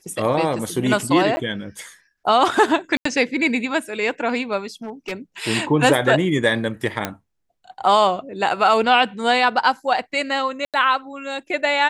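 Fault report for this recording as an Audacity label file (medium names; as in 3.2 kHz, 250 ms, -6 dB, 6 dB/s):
1.360000	1.370000	dropout 10 ms
2.970000	3.050000	dropout 84 ms
4.840000	5.130000	clipped -24 dBFS
7.050000	7.050000	pop -7 dBFS
10.650000	10.740000	dropout 87 ms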